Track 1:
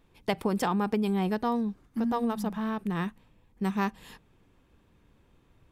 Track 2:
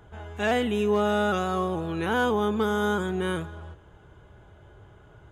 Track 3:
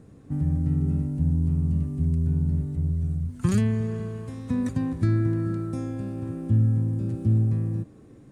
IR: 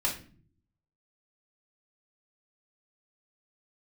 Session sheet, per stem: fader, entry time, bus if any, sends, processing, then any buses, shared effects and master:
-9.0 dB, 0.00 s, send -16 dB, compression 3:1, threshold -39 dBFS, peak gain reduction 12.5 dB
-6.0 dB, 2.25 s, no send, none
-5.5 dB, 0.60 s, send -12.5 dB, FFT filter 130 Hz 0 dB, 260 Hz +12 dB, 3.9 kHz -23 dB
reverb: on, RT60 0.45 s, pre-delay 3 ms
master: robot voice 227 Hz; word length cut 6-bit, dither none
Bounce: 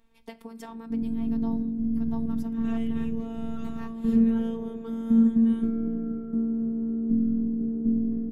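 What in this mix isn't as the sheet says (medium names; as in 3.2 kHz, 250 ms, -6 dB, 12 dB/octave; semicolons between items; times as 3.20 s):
stem 1 -9.0 dB -> -2.5 dB; stem 2 -6.0 dB -> -16.5 dB; master: missing word length cut 6-bit, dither none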